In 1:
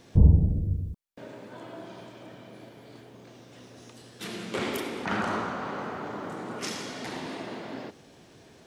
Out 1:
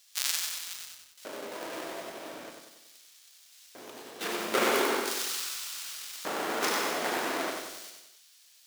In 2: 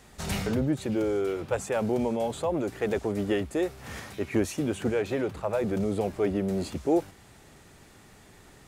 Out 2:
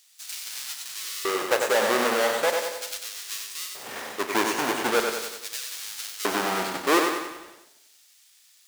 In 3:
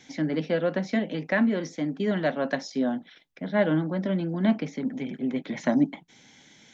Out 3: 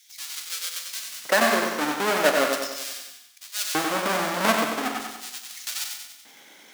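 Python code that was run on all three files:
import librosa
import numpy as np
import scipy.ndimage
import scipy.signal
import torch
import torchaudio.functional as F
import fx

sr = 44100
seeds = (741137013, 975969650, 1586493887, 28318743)

y = fx.halfwave_hold(x, sr)
y = fx.dynamic_eq(y, sr, hz=1400.0, q=1.1, threshold_db=-39.0, ratio=4.0, max_db=4)
y = fx.filter_lfo_highpass(y, sr, shape='square', hz=0.4, low_hz=440.0, high_hz=4500.0, q=0.87)
y = fx.doubler(y, sr, ms=40.0, db=-12.5)
y = fx.echo_feedback(y, sr, ms=94, feedback_pct=53, wet_db=-5.0)
y = fx.echo_crushed(y, sr, ms=116, feedback_pct=35, bits=7, wet_db=-11.0)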